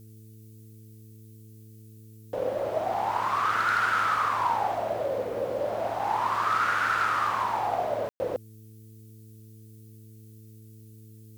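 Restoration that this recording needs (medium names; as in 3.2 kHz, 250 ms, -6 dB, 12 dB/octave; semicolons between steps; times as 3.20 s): clip repair -18 dBFS; de-hum 109.4 Hz, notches 4; room tone fill 8.09–8.20 s; expander -41 dBFS, range -21 dB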